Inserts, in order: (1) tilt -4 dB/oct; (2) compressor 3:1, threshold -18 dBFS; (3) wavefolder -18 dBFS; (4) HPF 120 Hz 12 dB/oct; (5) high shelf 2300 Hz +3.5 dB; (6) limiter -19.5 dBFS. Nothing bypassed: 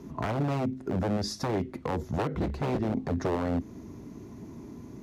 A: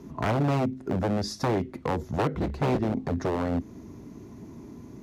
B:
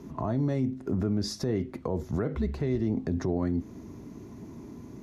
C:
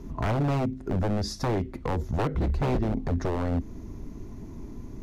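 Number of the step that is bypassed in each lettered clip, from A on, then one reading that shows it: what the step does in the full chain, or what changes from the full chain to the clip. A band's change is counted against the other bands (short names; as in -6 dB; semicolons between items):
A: 6, crest factor change +4.0 dB; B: 3, distortion -2 dB; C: 4, 125 Hz band +3.5 dB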